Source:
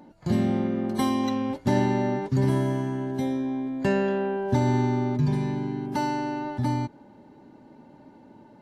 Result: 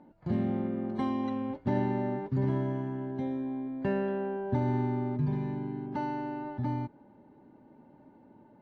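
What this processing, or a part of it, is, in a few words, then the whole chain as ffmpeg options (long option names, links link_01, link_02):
phone in a pocket: -af "lowpass=3200,highshelf=frequency=2500:gain=-8,volume=-6dB"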